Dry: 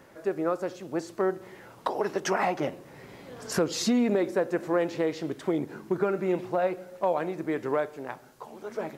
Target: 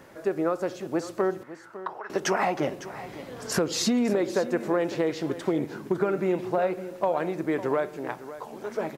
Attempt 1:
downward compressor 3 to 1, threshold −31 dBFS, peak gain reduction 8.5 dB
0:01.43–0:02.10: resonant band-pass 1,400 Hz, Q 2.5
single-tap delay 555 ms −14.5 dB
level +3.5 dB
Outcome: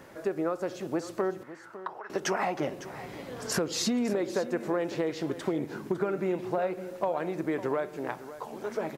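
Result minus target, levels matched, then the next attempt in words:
downward compressor: peak gain reduction +4.5 dB
downward compressor 3 to 1, threshold −24.5 dBFS, peak gain reduction 4 dB
0:01.43–0:02.10: resonant band-pass 1,400 Hz, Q 2.5
single-tap delay 555 ms −14.5 dB
level +3.5 dB

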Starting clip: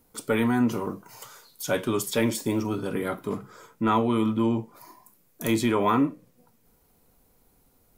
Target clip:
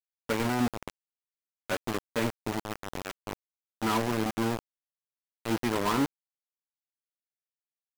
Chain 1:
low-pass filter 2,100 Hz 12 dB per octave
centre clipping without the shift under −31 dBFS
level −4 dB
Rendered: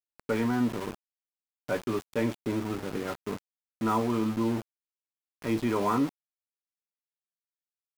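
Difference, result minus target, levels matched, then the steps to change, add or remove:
centre clipping without the shift: distortion −12 dB
change: centre clipping without the shift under −21.5 dBFS

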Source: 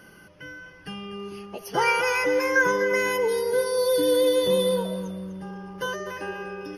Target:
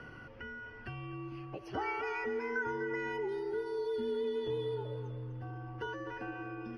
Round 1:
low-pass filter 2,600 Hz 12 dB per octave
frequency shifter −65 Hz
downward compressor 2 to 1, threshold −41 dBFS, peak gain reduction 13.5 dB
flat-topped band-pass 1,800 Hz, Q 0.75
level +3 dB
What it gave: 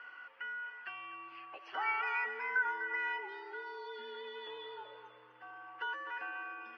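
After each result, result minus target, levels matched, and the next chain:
2,000 Hz band +5.5 dB; downward compressor: peak gain reduction −5 dB
low-pass filter 2,600 Hz 12 dB per octave
frequency shifter −65 Hz
downward compressor 2 to 1, threshold −41 dBFS, peak gain reduction 13.5 dB
level +3 dB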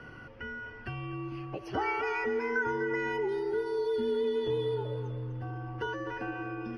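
downward compressor: peak gain reduction −5 dB
low-pass filter 2,600 Hz 12 dB per octave
frequency shifter −65 Hz
downward compressor 2 to 1, threshold −51 dBFS, peak gain reduction 18.5 dB
level +3 dB

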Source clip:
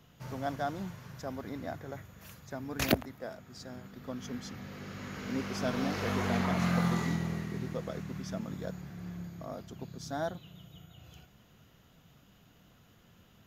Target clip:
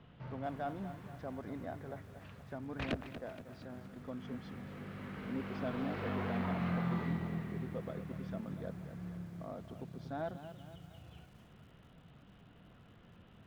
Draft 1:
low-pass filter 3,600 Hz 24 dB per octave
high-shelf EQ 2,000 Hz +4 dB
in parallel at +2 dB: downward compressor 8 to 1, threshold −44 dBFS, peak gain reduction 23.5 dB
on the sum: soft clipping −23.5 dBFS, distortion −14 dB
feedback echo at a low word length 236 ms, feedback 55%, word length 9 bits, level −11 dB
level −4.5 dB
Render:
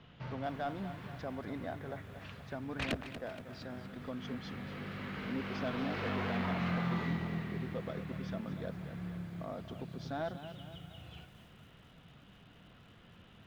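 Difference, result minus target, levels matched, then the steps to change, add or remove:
downward compressor: peak gain reduction −9.5 dB; 4,000 Hz band +5.5 dB
change: high-shelf EQ 2,000 Hz −5.5 dB
change: downward compressor 8 to 1, threshold −55.5 dBFS, peak gain reduction 33 dB

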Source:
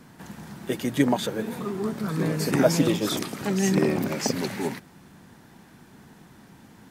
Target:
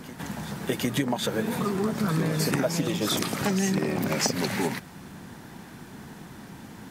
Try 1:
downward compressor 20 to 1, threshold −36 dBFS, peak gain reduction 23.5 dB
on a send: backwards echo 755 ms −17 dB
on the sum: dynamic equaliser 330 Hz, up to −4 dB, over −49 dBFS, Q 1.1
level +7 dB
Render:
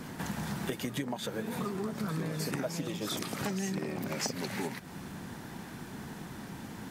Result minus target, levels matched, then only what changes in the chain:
downward compressor: peak gain reduction +9 dB
change: downward compressor 20 to 1, threshold −26.5 dBFS, peak gain reduction 14.5 dB

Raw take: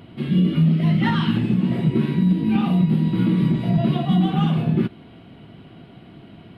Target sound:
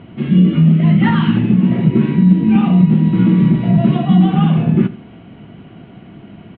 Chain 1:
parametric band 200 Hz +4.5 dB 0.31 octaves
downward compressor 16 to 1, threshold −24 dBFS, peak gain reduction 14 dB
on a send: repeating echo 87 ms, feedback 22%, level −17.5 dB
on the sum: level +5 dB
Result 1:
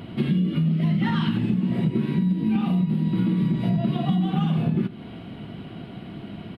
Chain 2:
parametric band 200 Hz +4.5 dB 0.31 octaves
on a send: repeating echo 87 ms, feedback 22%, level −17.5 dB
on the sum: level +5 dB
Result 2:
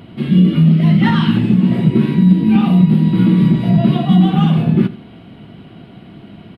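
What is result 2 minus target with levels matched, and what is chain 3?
4,000 Hz band +4.0 dB
low-pass filter 3,000 Hz 24 dB per octave
parametric band 200 Hz +4.5 dB 0.31 octaves
on a send: repeating echo 87 ms, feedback 22%, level −17.5 dB
on the sum: level +5 dB

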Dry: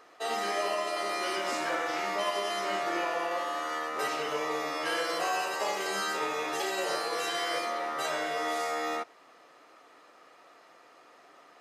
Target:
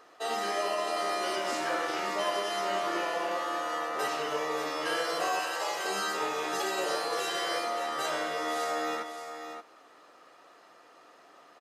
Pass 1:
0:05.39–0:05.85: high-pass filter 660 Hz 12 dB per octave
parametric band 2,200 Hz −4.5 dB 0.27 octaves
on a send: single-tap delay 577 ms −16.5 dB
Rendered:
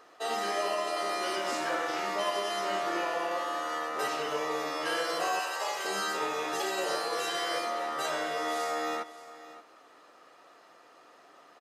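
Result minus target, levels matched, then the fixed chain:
echo-to-direct −7.5 dB
0:05.39–0:05.85: high-pass filter 660 Hz 12 dB per octave
parametric band 2,200 Hz −4.5 dB 0.27 octaves
on a send: single-tap delay 577 ms −9 dB

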